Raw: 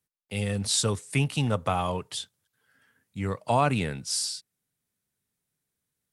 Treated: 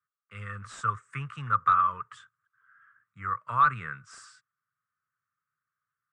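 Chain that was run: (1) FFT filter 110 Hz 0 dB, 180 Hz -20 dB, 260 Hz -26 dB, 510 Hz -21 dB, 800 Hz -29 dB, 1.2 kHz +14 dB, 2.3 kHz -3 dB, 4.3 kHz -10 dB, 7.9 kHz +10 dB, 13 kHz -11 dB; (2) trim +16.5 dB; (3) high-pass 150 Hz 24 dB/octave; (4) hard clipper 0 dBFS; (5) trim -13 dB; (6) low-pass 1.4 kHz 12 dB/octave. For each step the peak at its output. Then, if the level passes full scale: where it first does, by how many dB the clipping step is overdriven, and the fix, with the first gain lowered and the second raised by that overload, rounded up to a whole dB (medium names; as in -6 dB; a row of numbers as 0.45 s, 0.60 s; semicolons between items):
-8.5 dBFS, +8.0 dBFS, +8.0 dBFS, 0.0 dBFS, -13.0 dBFS, -13.0 dBFS; step 2, 8.0 dB; step 2 +8.5 dB, step 5 -5 dB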